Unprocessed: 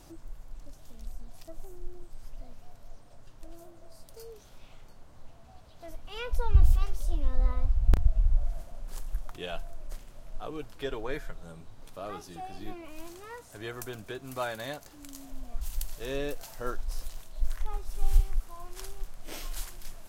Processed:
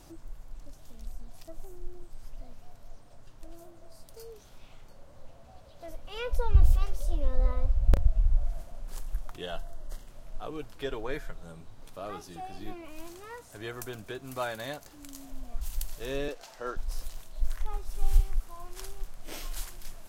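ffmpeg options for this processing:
-filter_complex "[0:a]asettb=1/sr,asplit=3[s0][s1][s2];[s0]atrim=end=4.914[s3];[s1]atrim=start=4.91:end=8.06,asetpts=PTS-STARTPTS,afade=t=in:d=0.004:c=qsin,afade=t=out:st=3.146:d=0.004:c=qsin,equalizer=f=550:t=o:w=0.24:g=11[s4];[s2]atrim=start=8.056[s5];[s3][s4]acrossfade=d=0.004:c1=hsin:c2=qsin[s6];[s6][s5]acrossfade=d=0.004:c1=qsin:c2=hsin,asettb=1/sr,asplit=3[s7][s8][s9];[s7]atrim=end=9.414[s10];[s8]atrim=start=9.41:end=10.07,asetpts=PTS-STARTPTS,afade=t=in:d=0.004:c=qsin,afade=t=out:st=0.656:d=0.004:c=qsin,asuperstop=centerf=2400:order=8:qfactor=4.8[s11];[s9]atrim=start=10.066[s12];[s10][s11]acrossfade=d=0.004:c1=hsin:c2=qsin[s13];[s13][s12]acrossfade=d=0.004:c1=qsin:c2=hsin,asettb=1/sr,asplit=3[s14][s15][s16];[s14]atrim=end=16.284[s17];[s15]atrim=start=16.28:end=16.77,asetpts=PTS-STARTPTS,afade=t=in:d=0.004:c=qsin,afade=t=out:st=0.486:d=0.004:c=qsin,acrossover=split=250 7100:gain=0.2 1 0.178[s18][s19][s20];[s18][s19][s20]amix=inputs=3:normalize=0[s21];[s16]atrim=start=16.766[s22];[s17][s21]acrossfade=d=0.004:c1=hsin:c2=qsin[s23];[s23][s22]acrossfade=d=0.004:c1=qsin:c2=hsin"

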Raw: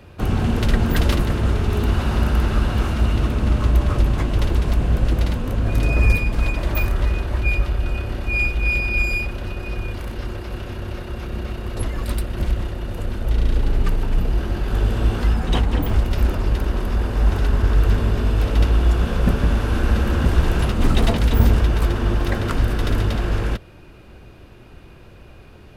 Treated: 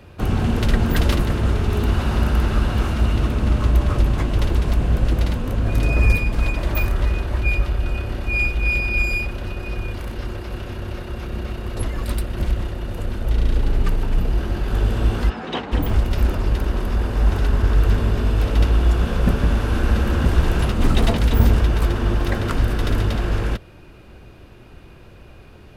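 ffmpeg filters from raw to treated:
-filter_complex "[0:a]asplit=3[s0][s1][s2];[s0]afade=t=out:st=15.29:d=0.02[s3];[s1]highpass=260,lowpass=4300,afade=t=in:st=15.29:d=0.02,afade=t=out:st=15.71:d=0.02[s4];[s2]afade=t=in:st=15.71:d=0.02[s5];[s3][s4][s5]amix=inputs=3:normalize=0"

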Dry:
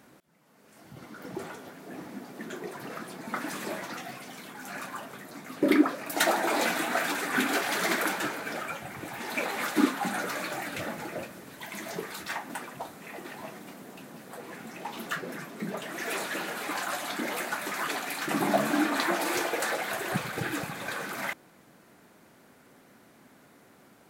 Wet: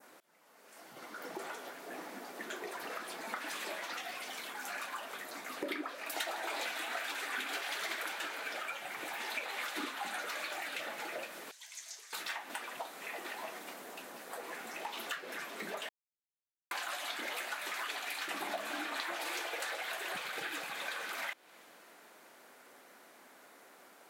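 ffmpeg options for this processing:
-filter_complex "[0:a]asettb=1/sr,asplit=3[s0][s1][s2];[s0]atrim=end=11.514[s3];[s1]atrim=start=11.51:end=12.13,asetpts=PTS-STARTPTS,afade=t=in:d=0.004:c=qsin,afade=t=out:st=0.616:d=0.004:c=qsin,bandpass=f=6300:t=q:w=2.2[s4];[s2]atrim=start=12.126[s5];[s3][s4]acrossfade=d=0.004:c1=hsin:c2=qsin[s6];[s6][s5]acrossfade=d=0.004:c1=qsin:c2=hsin,asplit=3[s7][s8][s9];[s7]atrim=end=15.89,asetpts=PTS-STARTPTS,afade=t=out:st=15.886:d=0.004:c=hsin[s10];[s8]atrim=start=15.89:end=16.71,asetpts=PTS-STARTPTS,volume=0[s11];[s9]atrim=start=16.71,asetpts=PTS-STARTPTS,afade=t=in:d=0.004:c=hsin[s12];[s10][s11][s12]concat=n=3:v=0:a=1,highpass=480,adynamicequalizer=threshold=0.00398:dfrequency=3100:dqfactor=1.1:tfrequency=3100:tqfactor=1.1:attack=5:release=100:ratio=0.375:range=3.5:mode=boostabove:tftype=bell,acompressor=threshold=0.01:ratio=4,volume=1.19"

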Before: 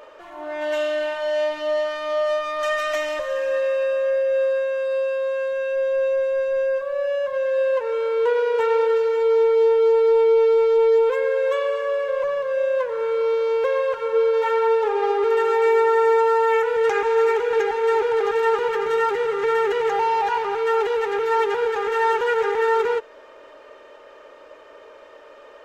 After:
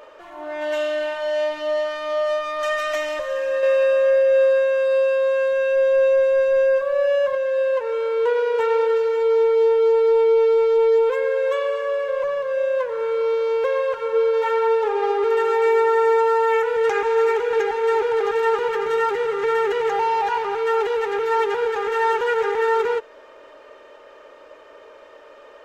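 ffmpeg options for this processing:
-filter_complex "[0:a]asplit=3[s0][s1][s2];[s0]atrim=end=3.632[s3];[s1]atrim=start=3.628:end=7.352,asetpts=PTS-STARTPTS,volume=1.68[s4];[s2]atrim=start=7.348[s5];[s3][s4]acrossfade=d=0.004:c1=hsin:c2=hsin[s6];[s6][s5]acrossfade=d=0.004:c1=hsin:c2=hsin"

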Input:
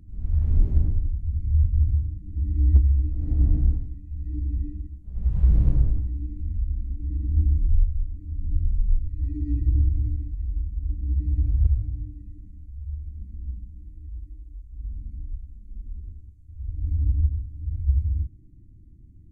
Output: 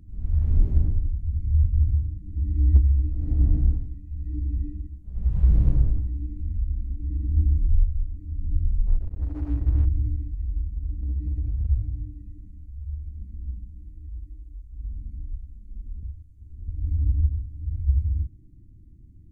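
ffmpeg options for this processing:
-filter_complex "[0:a]asettb=1/sr,asplit=3[s0][s1][s2];[s0]atrim=end=8.874[s3];[s1]atrim=start=8.87:end=9.86,asetpts=PTS-STARTPTS,afade=t=in:d=0.004:c=qsin,afade=t=out:st=0.986:d=0.004:c=qsin,aeval=exprs='sgn(val(0))*max(abs(val(0))-0.00944,0)':c=same[s4];[s2]atrim=start=9.856[s5];[s3][s4]acrossfade=d=0.004:c1=hsin:c2=qsin[s6];[s6][s5]acrossfade=d=0.004:c1=qsin:c2=hsin,asettb=1/sr,asplit=3[s7][s8][s9];[s7]atrim=end=10.694[s10];[s8]atrim=start=10.69:end=11.69,asetpts=PTS-STARTPTS,afade=t=in:d=0.004:c=qsin,afade=t=out:st=0.996:d=0.004:c=qsin,acompressor=threshold=0.0708:ratio=4:attack=3.2:release=140:knee=1:detection=peak[s11];[s9]atrim=start=11.686[s12];[s10][s11]acrossfade=d=0.004:c1=hsin:c2=qsin[s13];[s13][s12]acrossfade=d=0.004:c1=qsin:c2=hsin,asplit=3[s14][s15][s16];[s14]atrim=end=16.032[s17];[s15]atrim=start=16.028:end=16.682,asetpts=PTS-STARTPTS,areverse[s18];[s16]atrim=start=16.678[s19];[s17][s18]acrossfade=d=0.004:c1=hsin:c2=hsin[s20];[s20][s19]acrossfade=d=0.004:c1=hsin:c2=hsin"

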